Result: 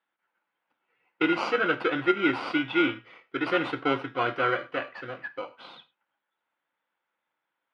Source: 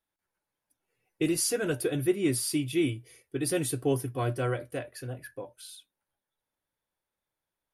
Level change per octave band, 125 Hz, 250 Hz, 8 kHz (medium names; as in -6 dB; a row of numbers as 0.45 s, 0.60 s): -10.0 dB, +1.0 dB, under -25 dB